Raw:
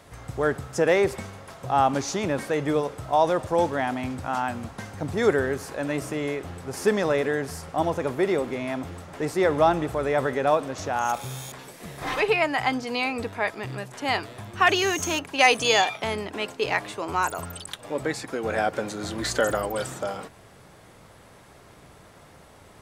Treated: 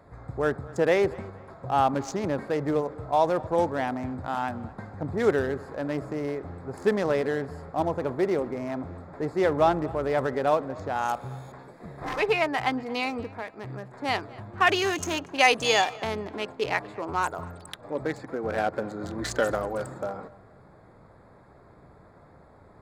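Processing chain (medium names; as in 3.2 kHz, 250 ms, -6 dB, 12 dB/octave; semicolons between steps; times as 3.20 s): local Wiener filter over 15 samples; 13.20–13.90 s: compression 12:1, threshold -30 dBFS, peak gain reduction 10.5 dB; tape echo 233 ms, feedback 35%, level -20.5 dB, low-pass 3.3 kHz; trim -1.5 dB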